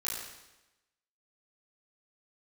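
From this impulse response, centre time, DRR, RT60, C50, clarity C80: 67 ms, -7.0 dB, 1.0 s, 0.5 dB, 4.0 dB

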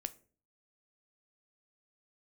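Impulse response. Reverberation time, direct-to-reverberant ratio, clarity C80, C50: 0.40 s, 11.0 dB, 24.5 dB, 19.5 dB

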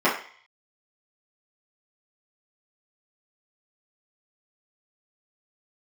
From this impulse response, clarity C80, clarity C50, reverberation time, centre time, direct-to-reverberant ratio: 11.0 dB, 6.5 dB, 0.45 s, 30 ms, -10.5 dB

